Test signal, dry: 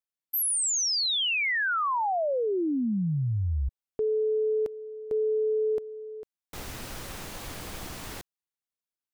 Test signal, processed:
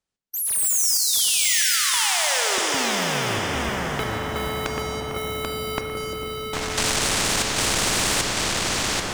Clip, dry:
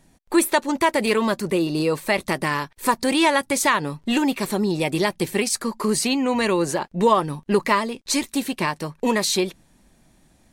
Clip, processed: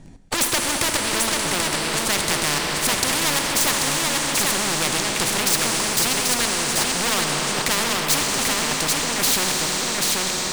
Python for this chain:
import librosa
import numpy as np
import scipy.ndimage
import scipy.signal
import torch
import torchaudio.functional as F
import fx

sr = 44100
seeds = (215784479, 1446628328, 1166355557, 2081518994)

y = scipy.signal.sosfilt(scipy.signal.butter(4, 8600.0, 'lowpass', fs=sr, output='sos'), x)
y = fx.low_shelf(y, sr, hz=400.0, db=11.5)
y = fx.leveller(y, sr, passes=3)
y = fx.step_gate(y, sr, bpm=93, pattern='x.xxxx.x.x..xxx', floor_db=-12.0, edge_ms=4.5)
y = 10.0 ** (-6.0 / 20.0) * np.tanh(y / 10.0 ** (-6.0 / 20.0))
y = y + 10.0 ** (-5.5 / 20.0) * np.pad(y, (int(787 * sr / 1000.0), 0))[:len(y)]
y = fx.rev_plate(y, sr, seeds[0], rt60_s=4.5, hf_ratio=0.95, predelay_ms=0, drr_db=5.5)
y = fx.spectral_comp(y, sr, ratio=4.0)
y = F.gain(torch.from_numpy(y), -4.0).numpy()